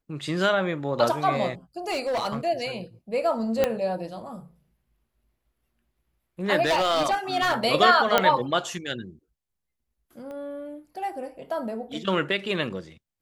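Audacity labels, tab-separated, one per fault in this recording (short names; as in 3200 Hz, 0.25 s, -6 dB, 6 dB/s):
1.880000	2.470000	clipped -22.5 dBFS
3.640000	3.640000	pop -8 dBFS
6.650000	7.540000	clipped -18.5 dBFS
8.180000	8.180000	pop -4 dBFS
10.310000	10.310000	pop -29 dBFS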